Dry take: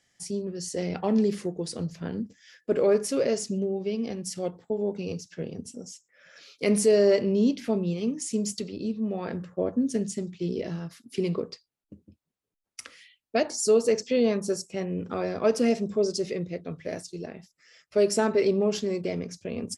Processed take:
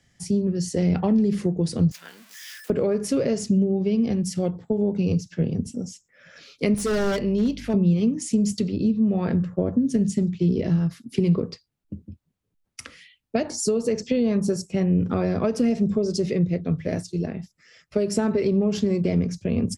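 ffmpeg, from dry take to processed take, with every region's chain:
ffmpeg -i in.wav -filter_complex "[0:a]asettb=1/sr,asplit=3[link_01][link_02][link_03];[link_01]atrim=end=1.914[link_04];[link_02]atrim=start=1.91:end=2.7,asetpts=PTS-STARTPTS,afade=type=in:duration=0.004:curve=qsin,afade=type=out:start_time=0.786:duration=0.004:curve=qsin,aeval=exprs='val(0)+0.5*0.00794*sgn(val(0))':channel_layout=same,highpass=1500,highshelf=frequency=6900:gain=8.5[link_05];[link_03]atrim=start=2.696[link_06];[link_04][link_05]acrossfade=duration=0.004:curve1=hsin:curve2=qsin[link_07];[link_07][link_06]acrossfade=duration=0.004:curve1=qsin:curve2=hsin,asettb=1/sr,asplit=3[link_08][link_09][link_10];[link_08]atrim=end=6.744[link_11];[link_09]atrim=start=6.74:end=7.74,asetpts=PTS-STARTPTS,afade=type=in:duration=0.004:curve=qsin,afade=type=out:start_time=0.996:duration=0.004:curve=qsin,lowshelf=frequency=430:gain=-11,aeval=exprs='0.0708*(abs(mod(val(0)/0.0708+3,4)-2)-1)':channel_layout=same,aeval=exprs='val(0)+0.00141*(sin(2*PI*50*n/s)+sin(2*PI*2*50*n/s)/2+sin(2*PI*3*50*n/s)/3+sin(2*PI*4*50*n/s)/4+sin(2*PI*5*50*n/s)/5)':channel_layout=same[link_12];[link_10]atrim=start=7.736[link_13];[link_11][link_12]acrossfade=duration=0.004:curve1=hsin:curve2=qsin[link_14];[link_14][link_13]acrossfade=duration=0.004:curve1=qsin:curve2=hsin,acompressor=threshold=-23dB:ratio=6,bass=frequency=250:gain=13,treble=frequency=4000:gain=-3,acrossover=split=130[link_15][link_16];[link_16]acompressor=threshold=-23dB:ratio=3[link_17];[link_15][link_17]amix=inputs=2:normalize=0,volume=4dB" out.wav

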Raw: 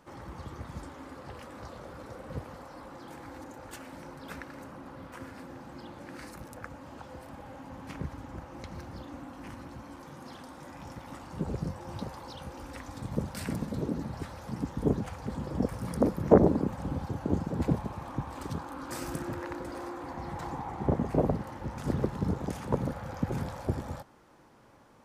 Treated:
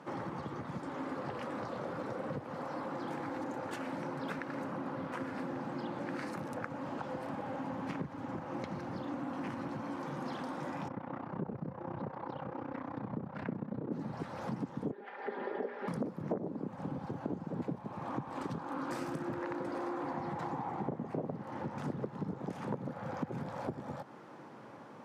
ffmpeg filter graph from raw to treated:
ffmpeg -i in.wav -filter_complex "[0:a]asettb=1/sr,asplit=3[link_01][link_02][link_03];[link_01]atrim=end=10.884[link_04];[link_02]atrim=start=10.88:end=13.92,asetpts=PTS-STARTPTS,afade=type=in:duration=0.004:curve=qsin,afade=type=out:start_time=3.036:duration=0.004:curve=qsin,lowpass=1800,tremolo=f=31:d=0.824[link_05];[link_03]atrim=start=13.916[link_06];[link_04][link_05]acrossfade=duration=0.004:curve1=hsin:curve2=qsin[link_07];[link_07][link_06]acrossfade=duration=0.004:curve1=qsin:curve2=hsin,asettb=1/sr,asplit=3[link_08][link_09][link_10];[link_08]atrim=end=14.914[link_11];[link_09]atrim=start=14.91:end=15.88,asetpts=PTS-STARTPTS,afade=type=in:duration=0.004:curve=qsin,afade=type=out:start_time=0.966:duration=0.004:curve=qsin,highpass=frequency=380:width=0.5412,highpass=frequency=380:width=1.3066,equalizer=frequency=410:width_type=q:width=4:gain=3,equalizer=frequency=640:width_type=q:width=4:gain=-5,equalizer=frequency=1100:width_type=q:width=4:gain=-9,equalizer=frequency=1800:width_type=q:width=4:gain=7,equalizer=frequency=2700:width_type=q:width=4:gain=-3,lowpass=frequency=3300:width=0.5412,lowpass=frequency=3300:width=1.3066,bandreject=frequency=60:width_type=h:width=6,bandreject=frequency=120:width_type=h:width=6,bandreject=frequency=180:width_type=h:width=6,bandreject=frequency=240:width_type=h:width=6,bandreject=frequency=300:width_type=h:width=6,bandreject=frequency=360:width_type=h:width=6,bandreject=frequency=420:width_type=h:width=6,bandreject=frequency=480:width_type=h:width=6,bandreject=frequency=540:width_type=h:width=6,bandreject=frequency=600:width_type=h:width=6,aecho=1:1:5:0.59,atrim=end_sample=42777[link_12];[link_10]atrim=start=15.876[link_13];[link_11][link_12]acrossfade=duration=0.004:curve1=hsin:curve2=qsin[link_14];[link_14][link_13]acrossfade=duration=0.004:curve1=qsin:curve2=hsin,acompressor=threshold=-42dB:ratio=10,highpass=frequency=130:width=0.5412,highpass=frequency=130:width=1.3066,aemphasis=mode=reproduction:type=75kf,volume=8.5dB" out.wav

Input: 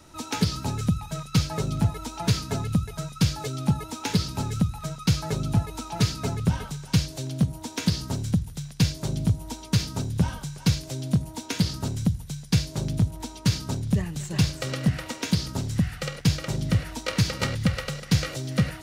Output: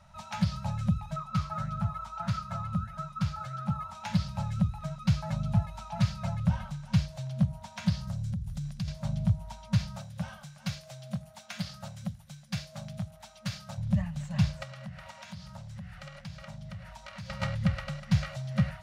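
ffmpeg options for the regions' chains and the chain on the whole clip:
ffmpeg -i in.wav -filter_complex "[0:a]asettb=1/sr,asplit=3[link_01][link_02][link_03];[link_01]atrim=end=1.164[link_04];[link_02]atrim=start=1.16:end=3.95,asetpts=PTS-STARTPTS,afade=type=in:duration=0.004:curve=qsin,afade=type=out:start_time=2.786:duration=0.004:curve=qsin,equalizer=frequency=1300:width=6:gain=14.5,flanger=delay=3.7:depth=8.7:regen=88:speed=1.6:shape=sinusoidal[link_05];[link_03]atrim=start=3.946[link_06];[link_04][link_05]acrossfade=duration=0.004:curve1=hsin:curve2=qsin[link_07];[link_07][link_06]acrossfade=duration=0.004:curve1=qsin:curve2=hsin,asettb=1/sr,asplit=3[link_08][link_09][link_10];[link_08]atrim=end=8.074[link_11];[link_09]atrim=start=8.07:end=8.88,asetpts=PTS-STARTPTS,afade=type=in:duration=0.004:curve=qsin,afade=type=out:start_time=0.806:duration=0.004:curve=qsin,bass=frequency=250:gain=7,treble=frequency=4000:gain=7,bandreject=frequency=910:width=10,acompressor=threshold=-27dB:ratio=6:attack=3.2:release=140:knee=1:detection=peak[link_12];[link_10]atrim=start=8.876[link_13];[link_11][link_12]acrossfade=duration=0.004:curve1=hsin:curve2=qsin[link_14];[link_14][link_13]acrossfade=duration=0.004:curve1=qsin:curve2=hsin,asettb=1/sr,asplit=3[link_15][link_16][link_17];[link_15]atrim=end=9.964[link_18];[link_16]atrim=start=9.96:end=13.78,asetpts=PTS-STARTPTS,afade=type=in:duration=0.004:curve=qsin,afade=type=out:start_time=3.816:duration=0.004:curve=qsin,highpass=frequency=420:poles=1,highshelf=frequency=12000:gain=8.5,bandreject=frequency=950:width=8.6[link_19];[link_17]atrim=start=13.776[link_20];[link_18][link_19]acrossfade=duration=0.004:curve1=hsin:curve2=qsin[link_21];[link_21][link_20]acrossfade=duration=0.004:curve1=qsin:curve2=hsin,asettb=1/sr,asplit=3[link_22][link_23][link_24];[link_22]atrim=end=14.634[link_25];[link_23]atrim=start=14.63:end=17.3,asetpts=PTS-STARTPTS,afade=type=in:duration=0.004:curve=qsin,afade=type=out:start_time=2.666:duration=0.004:curve=qsin,bandreject=frequency=60:width_type=h:width=6,bandreject=frequency=120:width_type=h:width=6,bandreject=frequency=180:width_type=h:width=6,bandreject=frequency=240:width_type=h:width=6,bandreject=frequency=300:width_type=h:width=6,bandreject=frequency=360:width_type=h:width=6,bandreject=frequency=420:width_type=h:width=6,bandreject=frequency=480:width_type=h:width=6,bandreject=frequency=540:width_type=h:width=6,acompressor=threshold=-35dB:ratio=3:attack=3.2:release=140:knee=1:detection=peak,bass=frequency=250:gain=-4,treble=frequency=4000:gain=1[link_26];[link_24]atrim=start=17.296[link_27];[link_25][link_26]acrossfade=duration=0.004:curve1=hsin:curve2=qsin[link_28];[link_28][link_27]acrossfade=duration=0.004:curve1=qsin:curve2=hsin,lowpass=frequency=1700:poles=1,afftfilt=real='re*(1-between(b*sr/4096,220,530))':imag='im*(1-between(b*sr/4096,220,530))':win_size=4096:overlap=0.75,volume=-3dB" out.wav

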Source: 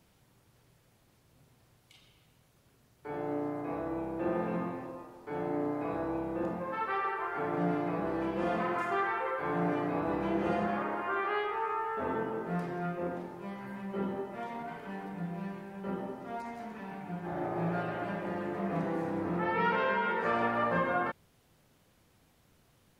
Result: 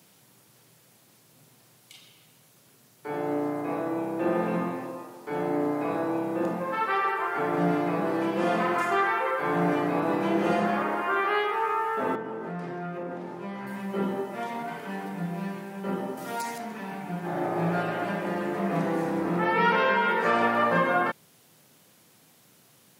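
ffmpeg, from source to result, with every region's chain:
ffmpeg -i in.wav -filter_complex "[0:a]asettb=1/sr,asplit=3[link_01][link_02][link_03];[link_01]atrim=end=12.154[link_04];[link_02]atrim=start=12.15:end=13.67,asetpts=PTS-STARTPTS,afade=type=in:duration=0.004:curve=qsin,afade=type=out:start_time=1.516:duration=0.004:curve=qsin,aemphasis=mode=reproduction:type=50fm,acompressor=threshold=-37dB:ratio=5:attack=3.2:release=140:knee=1:detection=peak[link_05];[link_03]atrim=start=13.666[link_06];[link_04][link_05]acrossfade=duration=0.004:curve1=hsin:curve2=qsin[link_07];[link_07][link_06]acrossfade=duration=0.004:curve1=qsin:curve2=hsin,asettb=1/sr,asplit=3[link_08][link_09][link_10];[link_08]atrim=end=16.174[link_11];[link_09]atrim=start=16.17:end=16.58,asetpts=PTS-STARTPTS,afade=type=in:duration=0.004:curve=qsin,afade=type=out:start_time=0.406:duration=0.004:curve=qsin,highshelf=frequency=3500:gain=12,aecho=1:1:6.4:0.4,atrim=end_sample=18081[link_12];[link_10]atrim=start=16.576[link_13];[link_11][link_12]acrossfade=duration=0.004:curve1=hsin:curve2=qsin[link_14];[link_14][link_13]acrossfade=duration=0.004:curve1=qsin:curve2=hsin,highpass=frequency=130:width=0.5412,highpass=frequency=130:width=1.3066,highshelf=frequency=4100:gain=9.5,volume=6dB" out.wav

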